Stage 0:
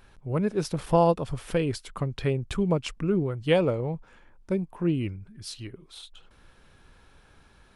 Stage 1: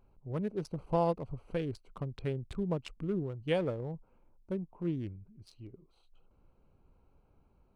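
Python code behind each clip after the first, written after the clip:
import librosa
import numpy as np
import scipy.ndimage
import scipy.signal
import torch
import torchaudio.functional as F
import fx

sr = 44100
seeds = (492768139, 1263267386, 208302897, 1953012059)

y = fx.wiener(x, sr, points=25)
y = F.gain(torch.from_numpy(y), -8.5).numpy()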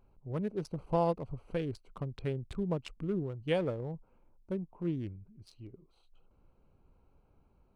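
y = x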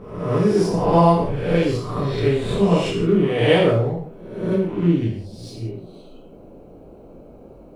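y = fx.spec_swells(x, sr, rise_s=0.88)
y = fx.rev_gated(y, sr, seeds[0], gate_ms=210, shape='falling', drr_db=-5.0)
y = fx.dmg_noise_band(y, sr, seeds[1], low_hz=150.0, high_hz=600.0, level_db=-53.0)
y = F.gain(torch.from_numpy(y), 8.5).numpy()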